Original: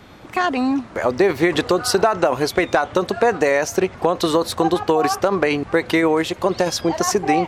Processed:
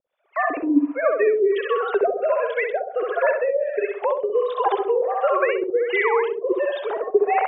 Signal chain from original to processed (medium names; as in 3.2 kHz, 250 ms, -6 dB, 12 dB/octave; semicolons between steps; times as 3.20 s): formants replaced by sine waves; filtered feedback delay 65 ms, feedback 56%, low-pass 2.7 kHz, level -3 dB; harmonic tremolo 1.4 Hz, depth 100%, crossover 490 Hz; gate -33 dBFS, range -18 dB; trim +1 dB